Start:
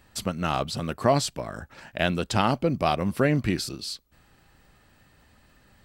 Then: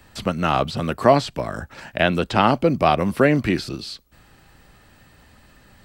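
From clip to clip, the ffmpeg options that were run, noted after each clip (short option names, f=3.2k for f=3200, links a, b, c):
-filter_complex "[0:a]acrossover=split=3700[a][b];[b]acompressor=threshold=-47dB:ratio=4:attack=1:release=60[c];[a][c]amix=inputs=2:normalize=0,acrossover=split=200|1100[d][e][f];[d]alimiter=level_in=6.5dB:limit=-24dB:level=0:latency=1,volume=-6.5dB[g];[g][e][f]amix=inputs=3:normalize=0,volume=7dB"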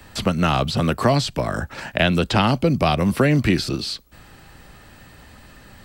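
-filter_complex "[0:a]acrossover=split=190|3000[a][b][c];[b]acompressor=threshold=-26dB:ratio=3[d];[a][d][c]amix=inputs=3:normalize=0,volume=6dB"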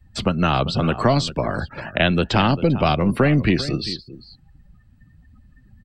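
-af "aeval=exprs='0.891*(cos(1*acos(clip(val(0)/0.891,-1,1)))-cos(1*PI/2))+0.0251*(cos(8*acos(clip(val(0)/0.891,-1,1)))-cos(8*PI/2))':c=same,aecho=1:1:395:0.2,afftdn=nr=27:nf=-36"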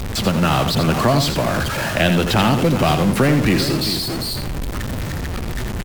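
-af "aeval=exprs='val(0)+0.5*0.133*sgn(val(0))':c=same,aecho=1:1:85|170|255:0.398|0.0756|0.0144,volume=-1dB" -ar 44100 -c:a libmp3lame -b:a 128k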